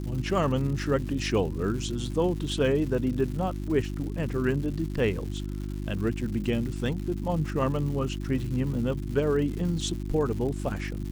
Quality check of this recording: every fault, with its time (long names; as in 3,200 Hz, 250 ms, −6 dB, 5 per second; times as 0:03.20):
surface crackle 260 per second −36 dBFS
mains hum 50 Hz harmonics 7 −33 dBFS